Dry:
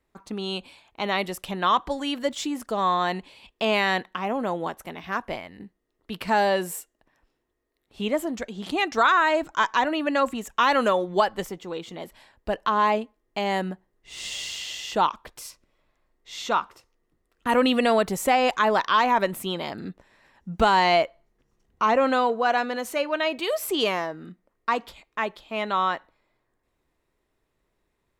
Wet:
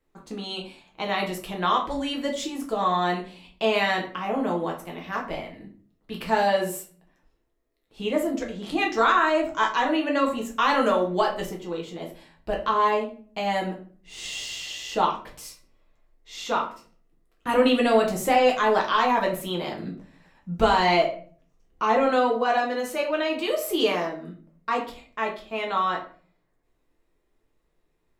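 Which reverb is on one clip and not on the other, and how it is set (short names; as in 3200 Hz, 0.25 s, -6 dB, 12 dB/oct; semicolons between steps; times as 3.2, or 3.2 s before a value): shoebox room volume 36 m³, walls mixed, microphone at 0.64 m; gain -4 dB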